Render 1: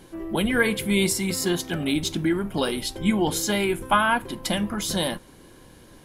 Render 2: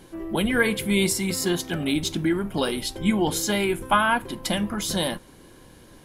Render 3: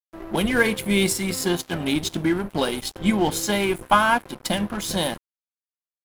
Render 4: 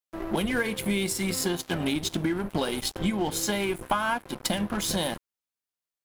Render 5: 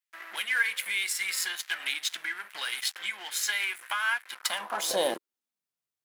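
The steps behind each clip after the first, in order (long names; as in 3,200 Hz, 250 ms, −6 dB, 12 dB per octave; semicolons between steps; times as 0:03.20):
no processing that can be heard
parametric band 760 Hz +2.5 dB; dead-zone distortion −35.5 dBFS; level +2.5 dB
downward compressor 6 to 1, threshold −27 dBFS, peak gain reduction 14 dB; level +3 dB
high-pass filter sweep 1,800 Hz → 100 Hz, 0:04.30–0:05.87; level −1 dB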